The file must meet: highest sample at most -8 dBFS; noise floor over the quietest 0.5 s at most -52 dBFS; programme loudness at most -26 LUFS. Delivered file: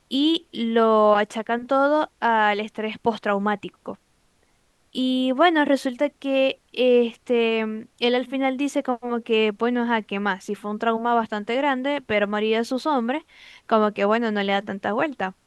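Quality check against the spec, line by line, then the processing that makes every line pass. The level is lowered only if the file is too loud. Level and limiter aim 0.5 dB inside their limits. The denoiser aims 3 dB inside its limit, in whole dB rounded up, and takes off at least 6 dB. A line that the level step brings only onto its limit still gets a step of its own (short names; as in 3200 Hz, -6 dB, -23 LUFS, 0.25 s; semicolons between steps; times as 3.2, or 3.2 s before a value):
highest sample -6.0 dBFS: fail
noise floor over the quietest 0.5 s -63 dBFS: OK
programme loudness -22.5 LUFS: fail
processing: gain -4 dB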